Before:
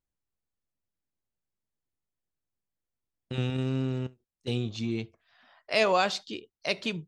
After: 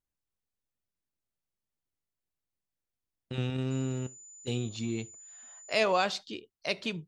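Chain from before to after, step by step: 3.7–5.79 whine 7000 Hz -46 dBFS; gain -2.5 dB

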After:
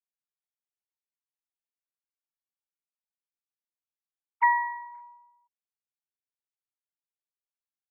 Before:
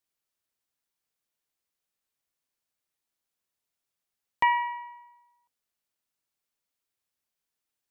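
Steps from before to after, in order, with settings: sine-wave speech; resonant high-pass 960 Hz, resonance Q 1.6; gain -2.5 dB

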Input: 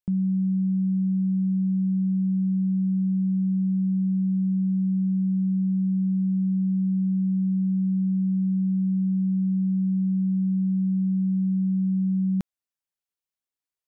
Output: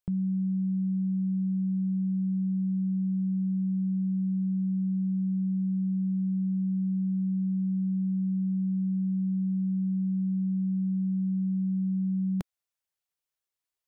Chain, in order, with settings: bell 230 Hz -15 dB 0.45 oct; gain +1.5 dB

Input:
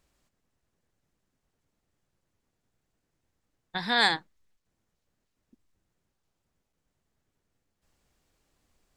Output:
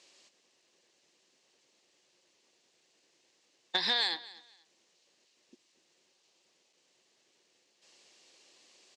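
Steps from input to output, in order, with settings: tilt +4 dB/oct; compressor 20:1, threshold -34 dBFS, peak gain reduction 22.5 dB; soft clip -26.5 dBFS, distortion -19 dB; speaker cabinet 190–6600 Hz, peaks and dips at 360 Hz +9 dB, 530 Hz +6 dB, 1400 Hz -7 dB, 2800 Hz +4 dB, 4300 Hz +3 dB; feedback echo 0.242 s, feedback 24%, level -19.5 dB; gain +8 dB

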